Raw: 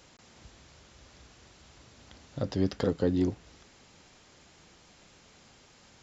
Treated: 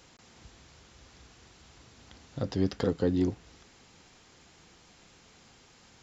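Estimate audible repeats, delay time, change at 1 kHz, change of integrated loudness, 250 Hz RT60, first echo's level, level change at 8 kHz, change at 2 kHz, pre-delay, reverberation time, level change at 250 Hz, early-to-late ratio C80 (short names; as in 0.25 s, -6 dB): none, none, 0.0 dB, 0.0 dB, none, none, n/a, 0.0 dB, none, none, 0.0 dB, none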